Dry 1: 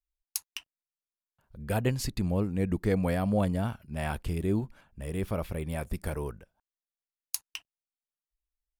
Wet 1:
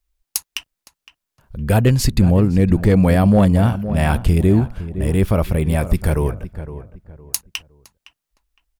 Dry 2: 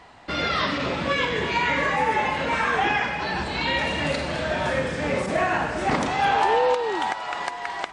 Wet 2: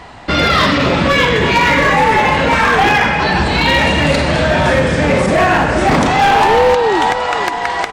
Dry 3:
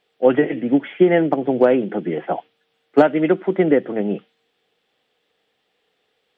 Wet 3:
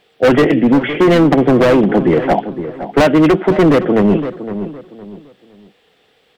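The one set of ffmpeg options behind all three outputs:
-filter_complex "[0:a]asoftclip=type=hard:threshold=-18.5dB,lowshelf=f=190:g=6,asplit=2[a][b];[b]adelay=512,lowpass=f=1.7k:p=1,volume=-13dB,asplit=2[c][d];[d]adelay=512,lowpass=f=1.7k:p=1,volume=0.3,asplit=2[e][f];[f]adelay=512,lowpass=f=1.7k:p=1,volume=0.3[g];[c][e][g]amix=inputs=3:normalize=0[h];[a][h]amix=inputs=2:normalize=0,alimiter=level_in=16dB:limit=-1dB:release=50:level=0:latency=1,volume=-3.5dB"

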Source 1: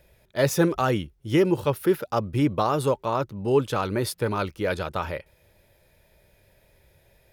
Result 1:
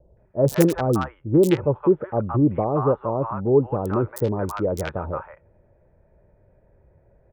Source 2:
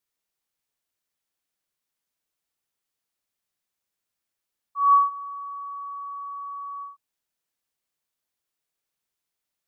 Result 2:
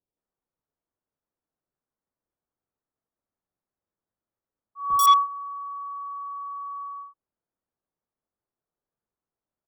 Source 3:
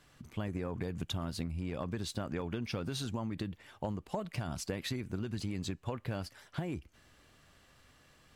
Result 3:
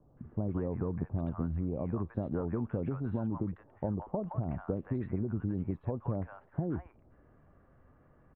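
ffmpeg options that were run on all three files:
-filter_complex "[0:a]equalizer=f=4.6k:w=7.9:g=-14.5,acrossover=split=700|1300[a][b][c];[c]acrusher=bits=3:mix=0:aa=0.000001[d];[a][b][d]amix=inputs=3:normalize=0,acrossover=split=880|4200[e][f][g];[g]adelay=90[h];[f]adelay=170[i];[e][i][h]amix=inputs=3:normalize=0,volume=4dB"

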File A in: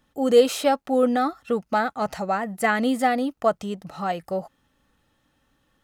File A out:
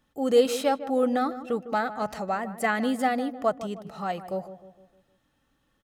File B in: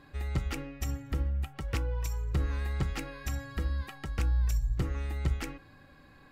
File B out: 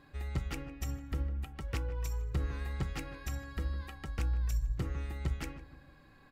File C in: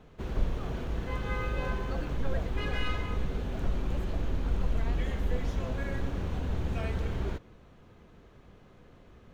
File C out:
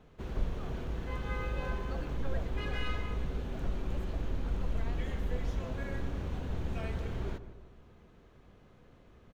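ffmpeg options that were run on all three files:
-filter_complex "[0:a]asplit=2[a][b];[b]adelay=154,lowpass=f=1.2k:p=1,volume=-12dB,asplit=2[c][d];[d]adelay=154,lowpass=f=1.2k:p=1,volume=0.5,asplit=2[e][f];[f]adelay=154,lowpass=f=1.2k:p=1,volume=0.5,asplit=2[g][h];[h]adelay=154,lowpass=f=1.2k:p=1,volume=0.5,asplit=2[i][j];[j]adelay=154,lowpass=f=1.2k:p=1,volume=0.5[k];[a][c][e][g][i][k]amix=inputs=6:normalize=0,volume=-4dB"

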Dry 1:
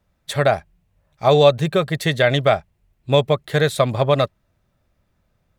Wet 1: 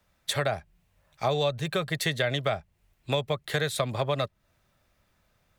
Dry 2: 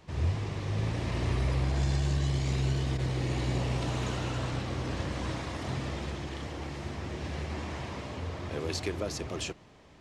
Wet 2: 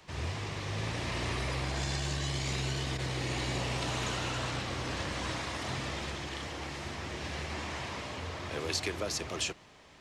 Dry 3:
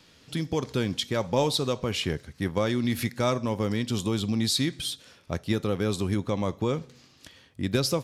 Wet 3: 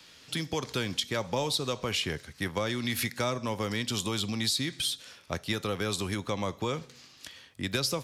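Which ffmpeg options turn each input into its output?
-filter_complex "[0:a]acrossover=split=150|530[a][b][c];[a]acompressor=threshold=-31dB:ratio=4[d];[b]acompressor=threshold=-30dB:ratio=4[e];[c]acompressor=threshold=-32dB:ratio=4[f];[d][e][f]amix=inputs=3:normalize=0,tiltshelf=f=700:g=-5"

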